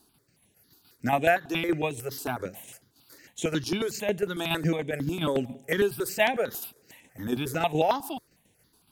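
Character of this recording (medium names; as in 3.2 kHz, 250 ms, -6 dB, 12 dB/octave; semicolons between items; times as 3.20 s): tremolo saw down 7.1 Hz, depth 55%; notches that jump at a steady rate 11 Hz 550–4700 Hz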